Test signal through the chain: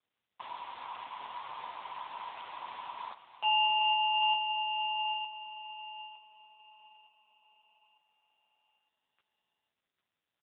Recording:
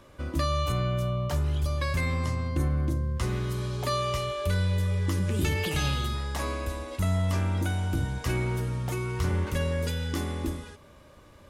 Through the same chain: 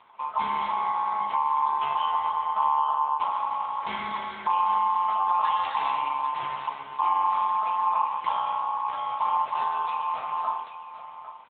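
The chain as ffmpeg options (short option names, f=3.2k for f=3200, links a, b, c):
-af "equalizer=f=600:t=o:w=2.1:g=-12,bandreject=f=270.1:t=h:w=4,bandreject=f=540.2:t=h:w=4,bandreject=f=810.3:t=h:w=4,aeval=exprs='val(0)*sin(2*PI*970*n/s)':c=same,lowshelf=f=470:g=-4.5,aecho=1:1:800:0.266,volume=8dB" -ar 8000 -c:a libopencore_amrnb -b:a 6700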